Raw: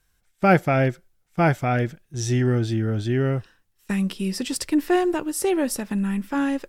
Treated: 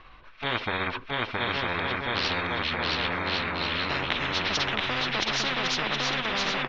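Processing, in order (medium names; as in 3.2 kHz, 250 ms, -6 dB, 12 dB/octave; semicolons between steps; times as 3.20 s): rotating-head pitch shifter -6 st; inverse Chebyshev low-pass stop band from 7.5 kHz, stop band 50 dB; bass shelf 270 Hz -7.5 dB; on a send: bouncing-ball echo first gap 670 ms, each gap 0.65×, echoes 5; on the sum: spectrum-flattening compressor 10:1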